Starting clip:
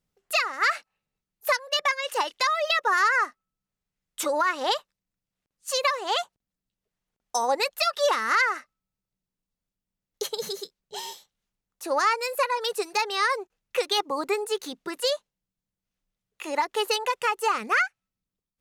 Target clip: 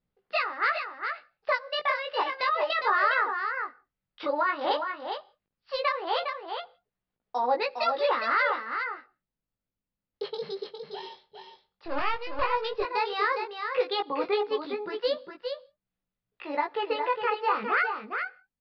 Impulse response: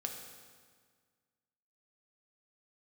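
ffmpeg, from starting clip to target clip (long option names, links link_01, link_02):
-filter_complex "[0:a]aemphasis=mode=reproduction:type=75fm,asettb=1/sr,asplit=3[link_01][link_02][link_03];[link_01]atrim=end=11.854[link_04];[link_02]atrim=start=11.85:end=12.42,asetpts=PTS-STARTPTS,afade=type=in:duration=0.004:curve=qsin,afade=type=out:start_time=0.566:duration=0.004:curve=qsin,aeval=exprs='max(val(0),0)':channel_layout=same[link_05];[link_03]atrim=start=12.416[link_06];[link_04][link_05]acrossfade=duration=0.004:curve1=hsin:curve2=qsin[link_07];[link_07][link_06]acrossfade=duration=0.004:curve1=qsin:curve2=hsin,asettb=1/sr,asplit=3[link_08][link_09][link_10];[link_08]atrim=end=16.594[link_11];[link_09]atrim=start=16.59:end=17.38,asetpts=PTS-STARTPTS,afade=type=in:duration=0.004:curve=qsin,afade=type=out:start_time=0.786:duration=0.004:curve=qsin,acrossover=split=3300[link_12][link_13];[link_13]acompressor=threshold=-48dB:ratio=4:attack=1:release=60[link_14];[link_12][link_14]amix=inputs=2:normalize=0[link_15];[link_10]atrim=start=17.376[link_16];[link_11][link_15]acrossfade=duration=0.004:curve1=hsin:curve2=qsin[link_17];[link_17][link_16]acrossfade=duration=0.004:curve1=qsin:curve2=hsin,flanger=delay=16:depth=5.3:speed=0.13,aecho=1:1:409:0.473,asplit=2[link_18][link_19];[1:a]atrim=start_sample=2205,afade=type=out:start_time=0.23:duration=0.01,atrim=end_sample=10584[link_20];[link_19][link_20]afir=irnorm=-1:irlink=0,volume=-16dB[link_21];[link_18][link_21]amix=inputs=2:normalize=0,aresample=11025,aresample=44100"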